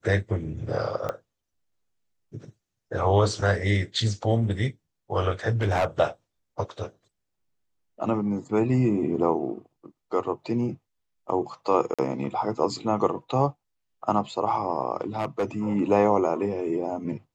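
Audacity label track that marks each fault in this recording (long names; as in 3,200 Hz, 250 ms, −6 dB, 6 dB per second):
1.090000	1.090000	click −16 dBFS
5.480000	5.860000	clipping −18.5 dBFS
11.940000	11.990000	drop-out 46 ms
15.160000	15.450000	clipping −21 dBFS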